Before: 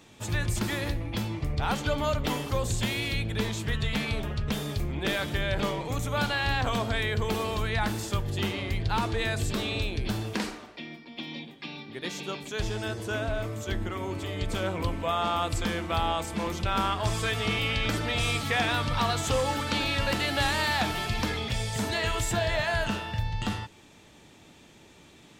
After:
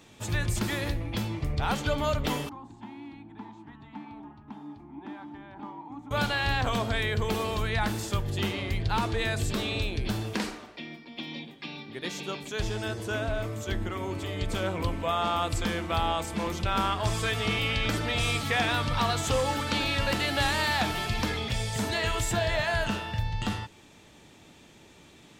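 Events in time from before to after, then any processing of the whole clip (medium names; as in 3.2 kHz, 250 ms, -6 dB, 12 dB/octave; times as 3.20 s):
2.49–6.11 s: two resonant band-passes 500 Hz, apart 1.6 oct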